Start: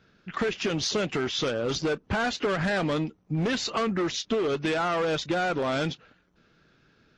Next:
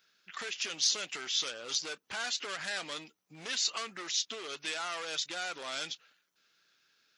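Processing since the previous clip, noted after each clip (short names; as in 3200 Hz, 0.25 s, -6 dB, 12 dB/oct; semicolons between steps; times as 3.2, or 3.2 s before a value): differentiator; gain +5 dB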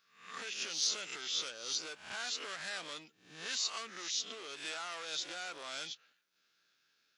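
spectral swells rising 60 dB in 0.52 s; gain -6.5 dB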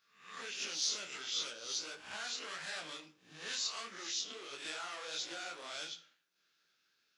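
on a send at -12 dB: reverb RT60 0.50 s, pre-delay 32 ms; on the sum: detuned doubles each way 52 cents; gain +2 dB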